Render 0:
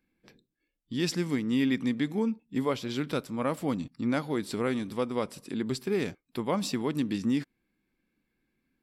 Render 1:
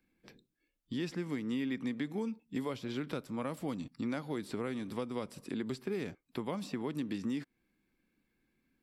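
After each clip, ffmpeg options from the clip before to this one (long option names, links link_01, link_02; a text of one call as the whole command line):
ffmpeg -i in.wav -filter_complex "[0:a]acrossover=split=280|2600[link_01][link_02][link_03];[link_01]acompressor=threshold=-41dB:ratio=4[link_04];[link_02]acompressor=threshold=-38dB:ratio=4[link_05];[link_03]acompressor=threshold=-54dB:ratio=4[link_06];[link_04][link_05][link_06]amix=inputs=3:normalize=0" out.wav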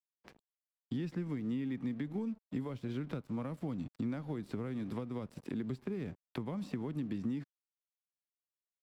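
ffmpeg -i in.wav -filter_complex "[0:a]highshelf=frequency=3100:gain=-10,aeval=exprs='sgn(val(0))*max(abs(val(0))-0.00112,0)':channel_layout=same,acrossover=split=190[link_01][link_02];[link_02]acompressor=threshold=-47dB:ratio=6[link_03];[link_01][link_03]amix=inputs=2:normalize=0,volume=6dB" out.wav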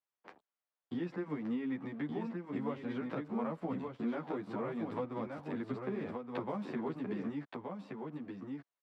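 ffmpeg -i in.wav -filter_complex "[0:a]bandpass=frequency=890:width_type=q:width=0.81:csg=0,aecho=1:1:1173:0.596,asplit=2[link_01][link_02];[link_02]adelay=10.8,afreqshift=1.5[link_03];[link_01][link_03]amix=inputs=2:normalize=1,volume=10.5dB" out.wav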